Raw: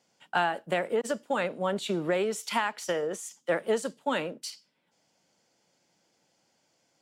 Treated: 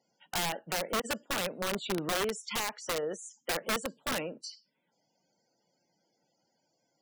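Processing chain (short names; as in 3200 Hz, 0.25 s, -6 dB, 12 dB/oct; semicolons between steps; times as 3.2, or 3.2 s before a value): loudest bins only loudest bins 64; wrapped overs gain 22 dB; gain -3 dB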